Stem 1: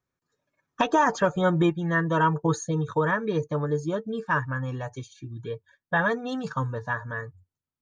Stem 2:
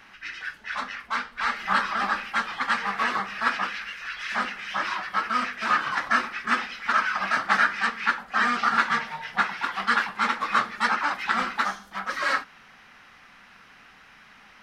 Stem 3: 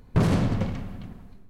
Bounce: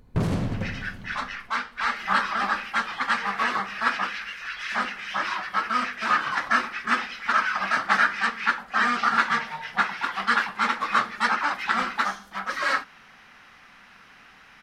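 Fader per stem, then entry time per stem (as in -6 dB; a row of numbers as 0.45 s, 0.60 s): mute, +0.5 dB, -3.5 dB; mute, 0.40 s, 0.00 s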